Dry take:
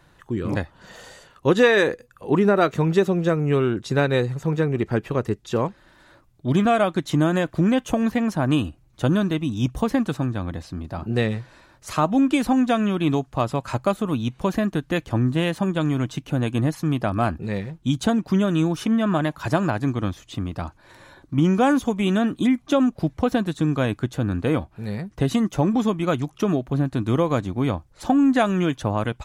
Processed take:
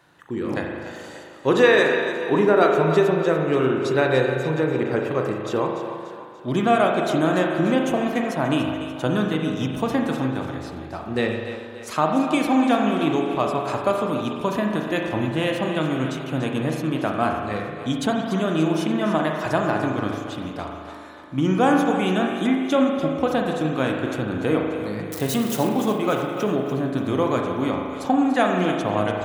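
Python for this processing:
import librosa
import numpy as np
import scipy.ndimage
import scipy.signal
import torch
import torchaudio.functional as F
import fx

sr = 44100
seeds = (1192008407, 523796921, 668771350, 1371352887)

y = fx.crossing_spikes(x, sr, level_db=-21.5, at=(25.12, 25.69))
y = scipy.signal.sosfilt(scipy.signal.butter(2, 78.0, 'highpass', fs=sr, output='sos'), y)
y = fx.bass_treble(y, sr, bass_db=-7, treble_db=-1)
y = fx.hum_notches(y, sr, base_hz=50, count=2)
y = fx.echo_split(y, sr, split_hz=300.0, low_ms=148, high_ms=291, feedback_pct=52, wet_db=-11.0)
y = fx.rev_spring(y, sr, rt60_s=1.7, pass_ms=(38,), chirp_ms=55, drr_db=1.5)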